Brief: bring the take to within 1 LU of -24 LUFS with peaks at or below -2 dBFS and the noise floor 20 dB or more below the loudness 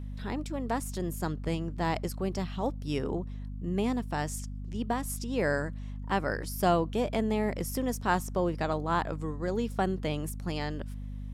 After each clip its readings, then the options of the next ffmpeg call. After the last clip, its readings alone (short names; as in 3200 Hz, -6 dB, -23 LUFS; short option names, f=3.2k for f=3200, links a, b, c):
hum 50 Hz; harmonics up to 250 Hz; hum level -35 dBFS; loudness -32.0 LUFS; peak -13.0 dBFS; loudness target -24.0 LUFS
-> -af "bandreject=f=50:t=h:w=4,bandreject=f=100:t=h:w=4,bandreject=f=150:t=h:w=4,bandreject=f=200:t=h:w=4,bandreject=f=250:t=h:w=4"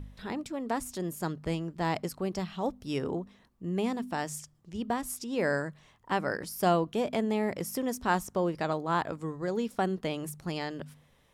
hum none; loudness -32.5 LUFS; peak -13.5 dBFS; loudness target -24.0 LUFS
-> -af "volume=8.5dB"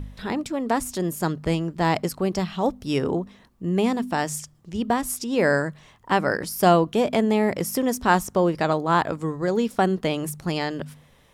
loudness -24.0 LUFS; peak -5.0 dBFS; noise floor -56 dBFS